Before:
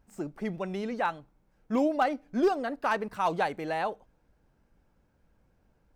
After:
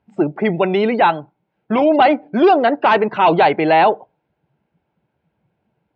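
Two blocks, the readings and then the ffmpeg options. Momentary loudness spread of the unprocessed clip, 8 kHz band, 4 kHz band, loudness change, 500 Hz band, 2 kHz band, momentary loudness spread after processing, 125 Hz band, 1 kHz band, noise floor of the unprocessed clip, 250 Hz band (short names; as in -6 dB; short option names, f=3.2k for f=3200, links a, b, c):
9 LU, n/a, +17.0 dB, +15.0 dB, +15.5 dB, +14.0 dB, 7 LU, +14.5 dB, +16.0 dB, -70 dBFS, +13.5 dB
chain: -af "apsyclip=27dB,afftdn=nr=18:nf=-27,highpass=f=160:w=0.5412,highpass=f=160:w=1.3066,equalizer=f=190:t=q:w=4:g=-8,equalizer=f=260:t=q:w=4:g=-9,equalizer=f=510:t=q:w=4:g=-6,equalizer=f=1.2k:t=q:w=4:g=-8,equalizer=f=1.7k:t=q:w=4:g=-6,lowpass=f=3.4k:w=0.5412,lowpass=f=3.4k:w=1.3066,volume=-4dB"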